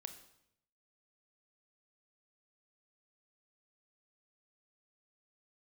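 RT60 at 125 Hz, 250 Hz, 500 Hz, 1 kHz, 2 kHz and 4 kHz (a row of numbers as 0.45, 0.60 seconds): 1.0, 0.85, 0.80, 0.75, 0.70, 0.70 seconds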